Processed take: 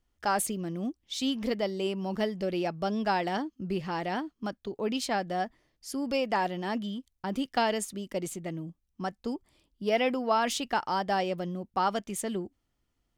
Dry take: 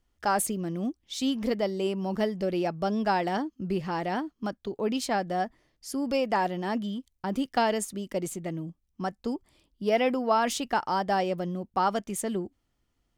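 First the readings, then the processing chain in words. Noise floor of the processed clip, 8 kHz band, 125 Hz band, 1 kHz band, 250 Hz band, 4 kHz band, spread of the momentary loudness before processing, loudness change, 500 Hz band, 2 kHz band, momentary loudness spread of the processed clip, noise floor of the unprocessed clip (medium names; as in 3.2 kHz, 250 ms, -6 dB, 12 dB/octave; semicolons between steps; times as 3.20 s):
-78 dBFS, -1.5 dB, -2.5 dB, -2.0 dB, -2.5 dB, +1.0 dB, 10 LU, -2.0 dB, -2.5 dB, -0.5 dB, 10 LU, -76 dBFS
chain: dynamic bell 3.2 kHz, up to +4 dB, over -47 dBFS, Q 0.81; trim -2.5 dB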